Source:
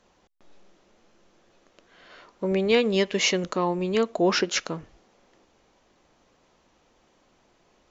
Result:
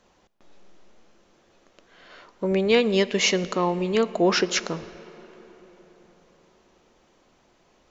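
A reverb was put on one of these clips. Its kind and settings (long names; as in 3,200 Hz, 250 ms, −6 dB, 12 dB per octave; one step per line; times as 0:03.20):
comb and all-pass reverb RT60 4.5 s, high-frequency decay 0.55×, pre-delay 10 ms, DRR 16.5 dB
level +1.5 dB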